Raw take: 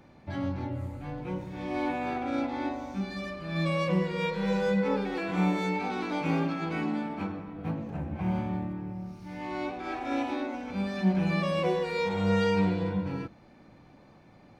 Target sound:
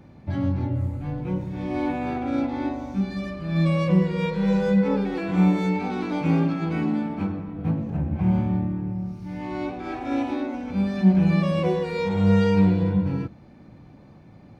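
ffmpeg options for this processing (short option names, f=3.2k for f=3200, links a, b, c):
-af "equalizer=f=100:w=0.33:g=10.5"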